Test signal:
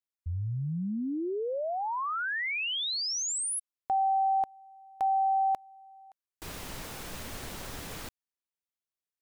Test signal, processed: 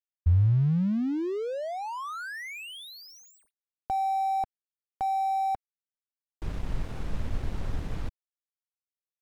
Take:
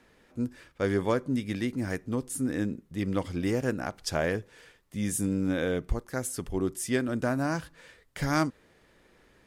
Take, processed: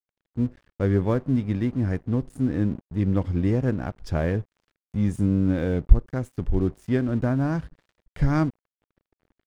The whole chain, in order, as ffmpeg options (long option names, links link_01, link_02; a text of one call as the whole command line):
ffmpeg -i in.wav -af "aemphasis=mode=reproduction:type=riaa,aeval=exprs='sgn(val(0))*max(abs(val(0))-0.00631,0)':channel_layout=same,volume=-1dB" out.wav